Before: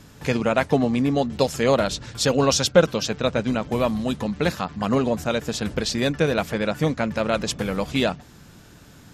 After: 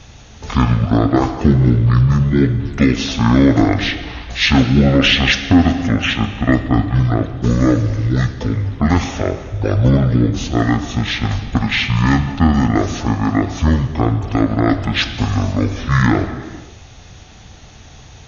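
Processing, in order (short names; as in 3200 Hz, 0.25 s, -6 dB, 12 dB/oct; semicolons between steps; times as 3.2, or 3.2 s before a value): non-linear reverb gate 0.29 s falling, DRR 8.5 dB; speed mistake 15 ips tape played at 7.5 ips; tone controls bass +1 dB, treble +8 dB; maximiser +7.5 dB; gain -1 dB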